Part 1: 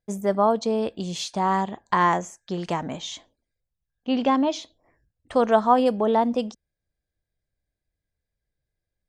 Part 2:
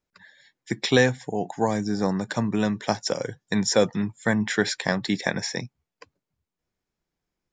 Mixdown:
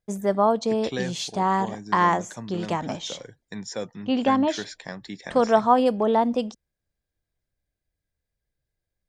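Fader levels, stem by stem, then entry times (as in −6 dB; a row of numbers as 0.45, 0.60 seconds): 0.0, −12.0 decibels; 0.00, 0.00 seconds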